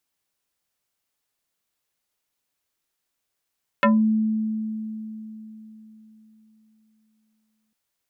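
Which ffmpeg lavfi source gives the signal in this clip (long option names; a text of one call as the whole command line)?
ffmpeg -f lavfi -i "aevalsrc='0.224*pow(10,-3*t/3.93)*sin(2*PI*218*t+3.1*pow(10,-3*t/0.22)*sin(2*PI*3.62*218*t))':duration=3.9:sample_rate=44100" out.wav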